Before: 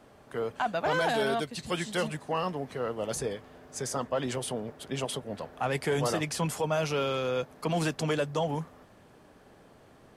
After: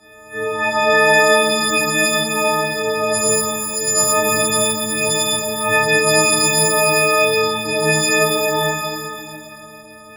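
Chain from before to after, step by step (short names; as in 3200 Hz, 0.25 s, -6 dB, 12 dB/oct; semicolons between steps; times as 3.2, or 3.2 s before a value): frequency quantiser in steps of 6 st; shimmer reverb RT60 2.1 s, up +12 st, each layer -8 dB, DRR -10.5 dB; gain -1 dB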